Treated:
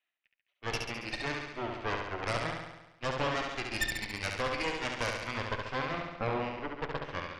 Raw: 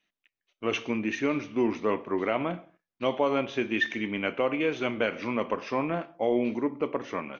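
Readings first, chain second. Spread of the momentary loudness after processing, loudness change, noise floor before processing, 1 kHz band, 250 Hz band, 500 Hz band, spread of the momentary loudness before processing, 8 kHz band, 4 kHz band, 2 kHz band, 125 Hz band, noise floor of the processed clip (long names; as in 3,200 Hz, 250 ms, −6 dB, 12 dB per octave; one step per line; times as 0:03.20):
6 LU, −6.0 dB, below −85 dBFS, −2.5 dB, −12.0 dB, −9.0 dB, 5 LU, can't be measured, +1.0 dB, −2.0 dB, +1.0 dB, below −85 dBFS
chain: three-way crossover with the lows and the highs turned down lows −18 dB, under 450 Hz, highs −17 dB, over 3,800 Hz
harmonic generator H 6 −8 dB, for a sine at −16 dBFS
flutter between parallel walls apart 11.9 metres, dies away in 1 s
level −7 dB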